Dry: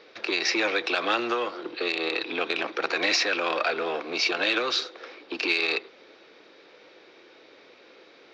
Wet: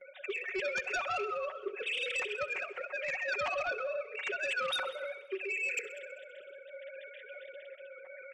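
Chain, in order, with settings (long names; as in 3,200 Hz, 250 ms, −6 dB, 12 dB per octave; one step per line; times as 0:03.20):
three sine waves on the formant tracks
notch filter 510 Hz, Q 12
noise gate with hold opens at −50 dBFS
comb filter 5.4 ms, depth 92%
reversed playback
downward compressor 4 to 1, threshold −38 dBFS, peak gain reduction 19 dB
reversed playback
rotating-speaker cabinet horn 0.8 Hz
sine wavefolder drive 6 dB, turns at −26 dBFS
echo machine with several playback heads 65 ms, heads all three, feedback 44%, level −21.5 dB
level −3 dB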